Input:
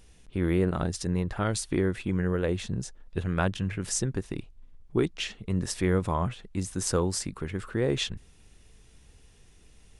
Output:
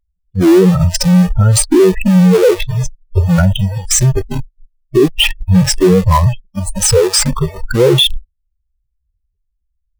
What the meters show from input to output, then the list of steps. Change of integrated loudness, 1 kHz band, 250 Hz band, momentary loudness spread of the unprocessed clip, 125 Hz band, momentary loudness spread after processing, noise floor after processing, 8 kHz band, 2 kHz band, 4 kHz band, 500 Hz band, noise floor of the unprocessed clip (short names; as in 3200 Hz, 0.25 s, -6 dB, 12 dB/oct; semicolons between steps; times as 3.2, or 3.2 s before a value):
+18.0 dB, +14.5 dB, +17.5 dB, 8 LU, +18.0 dB, 11 LU, -68 dBFS, +18.0 dB, +13.5 dB, +21.0 dB, +18.0 dB, -56 dBFS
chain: spectral contrast raised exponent 3; dynamic EQ 6600 Hz, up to -3 dB, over -47 dBFS, Q 2.6; in parallel at -4 dB: Schmitt trigger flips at -38 dBFS; on the sum: spectral noise reduction 30 dB; maximiser +19.5 dB; gain -1 dB